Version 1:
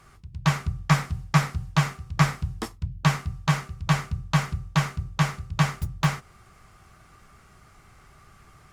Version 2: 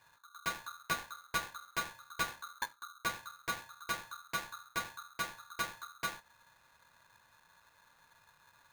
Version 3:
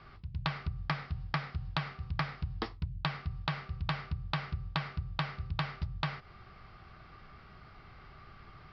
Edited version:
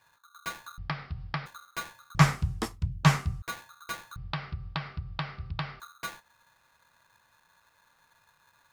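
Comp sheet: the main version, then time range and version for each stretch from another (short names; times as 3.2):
2
0.78–1.46 from 3
2.15–3.42 from 1
4.16–5.8 from 3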